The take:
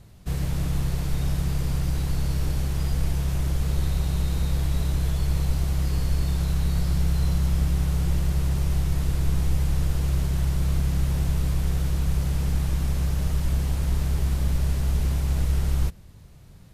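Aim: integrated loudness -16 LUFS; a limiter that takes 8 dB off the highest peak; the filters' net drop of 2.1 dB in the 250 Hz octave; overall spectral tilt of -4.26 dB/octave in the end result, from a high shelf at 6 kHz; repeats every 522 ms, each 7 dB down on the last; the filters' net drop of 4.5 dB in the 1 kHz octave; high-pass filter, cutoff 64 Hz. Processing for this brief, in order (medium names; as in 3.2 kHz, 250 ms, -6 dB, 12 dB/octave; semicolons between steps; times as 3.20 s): high-pass 64 Hz; peaking EQ 250 Hz -4 dB; peaking EQ 1 kHz -6 dB; treble shelf 6 kHz +9 dB; peak limiter -22 dBFS; feedback delay 522 ms, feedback 45%, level -7 dB; trim +13 dB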